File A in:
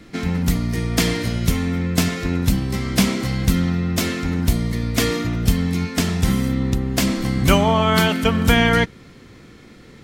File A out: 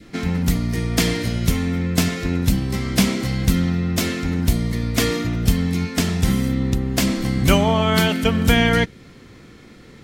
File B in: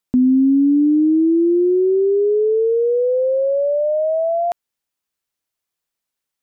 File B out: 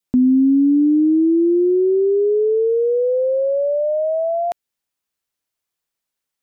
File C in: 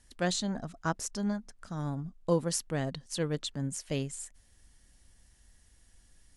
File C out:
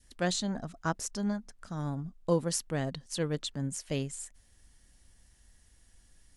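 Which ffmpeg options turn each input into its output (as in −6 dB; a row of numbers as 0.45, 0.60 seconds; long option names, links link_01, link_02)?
-af "adynamicequalizer=threshold=0.0141:dfrequency=1100:dqfactor=1.6:tfrequency=1100:tqfactor=1.6:attack=5:release=100:ratio=0.375:range=2.5:mode=cutabove:tftype=bell"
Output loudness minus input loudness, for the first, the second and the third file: −0.5, −0.5, 0.0 LU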